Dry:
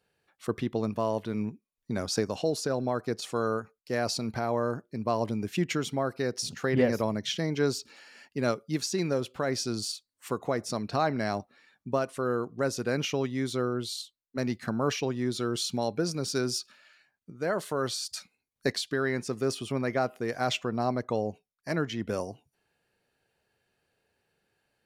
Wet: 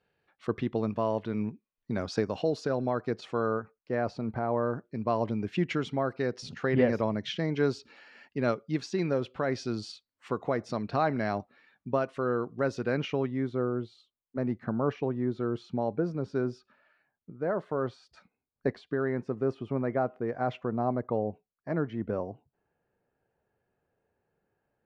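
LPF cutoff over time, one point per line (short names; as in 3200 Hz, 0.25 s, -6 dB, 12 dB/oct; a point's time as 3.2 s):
2.95 s 3200 Hz
4.36 s 1300 Hz
4.95 s 3000 Hz
12.85 s 3000 Hz
13.58 s 1200 Hz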